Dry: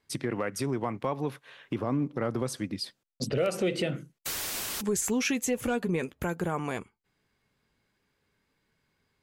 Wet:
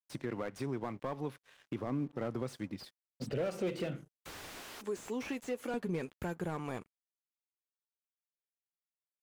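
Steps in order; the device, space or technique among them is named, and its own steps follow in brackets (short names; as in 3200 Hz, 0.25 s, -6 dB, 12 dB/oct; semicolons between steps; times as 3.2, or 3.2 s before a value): 4.6–5.74 HPF 260 Hz 24 dB/oct; early transistor amplifier (crossover distortion -54.5 dBFS; slew limiter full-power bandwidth 38 Hz); gain -6.5 dB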